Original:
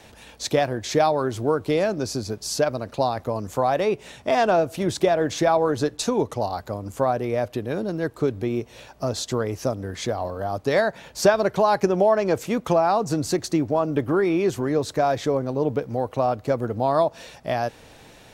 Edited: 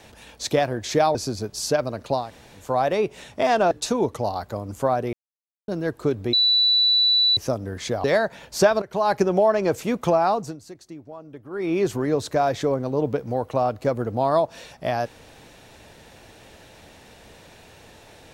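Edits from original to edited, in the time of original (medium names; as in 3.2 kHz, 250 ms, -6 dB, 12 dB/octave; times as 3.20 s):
1.15–2.03 s: delete
3.11–3.53 s: room tone, crossfade 0.24 s
4.59–5.88 s: delete
7.30–7.85 s: mute
8.50–9.54 s: bleep 3.96 kHz -15 dBFS
10.21–10.67 s: delete
11.45–11.75 s: fade in, from -19.5 dB
12.93–14.40 s: dip -18 dB, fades 0.27 s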